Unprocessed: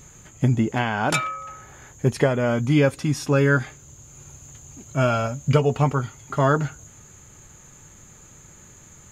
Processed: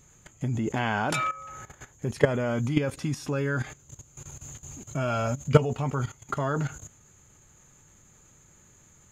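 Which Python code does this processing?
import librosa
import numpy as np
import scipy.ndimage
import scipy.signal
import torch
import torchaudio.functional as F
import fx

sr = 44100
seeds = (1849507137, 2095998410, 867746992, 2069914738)

y = fx.level_steps(x, sr, step_db=15)
y = y * librosa.db_to_amplitude(3.0)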